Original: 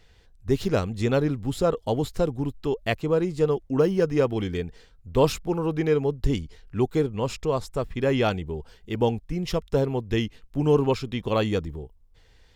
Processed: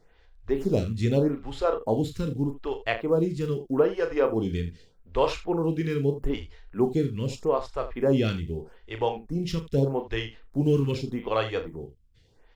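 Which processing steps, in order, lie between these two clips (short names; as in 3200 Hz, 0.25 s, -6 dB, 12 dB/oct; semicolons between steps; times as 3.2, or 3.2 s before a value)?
block floating point 7-bit; high shelf 7900 Hz -11 dB; on a send: early reflections 36 ms -8 dB, 80 ms -14.5 dB; on the sum: photocell phaser 0.81 Hz; gain +1 dB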